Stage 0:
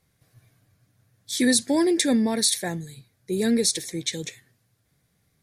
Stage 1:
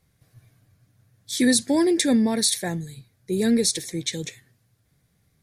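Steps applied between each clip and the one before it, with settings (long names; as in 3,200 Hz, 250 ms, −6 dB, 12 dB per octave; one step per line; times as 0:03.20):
low-shelf EQ 170 Hz +5.5 dB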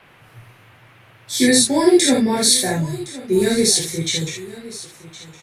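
single-tap delay 1,064 ms −17.5 dB
reverb whose tail is shaped and stops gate 100 ms flat, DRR −6.5 dB
noise in a band 180–2,700 Hz −51 dBFS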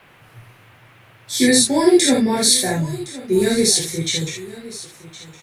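bit reduction 11 bits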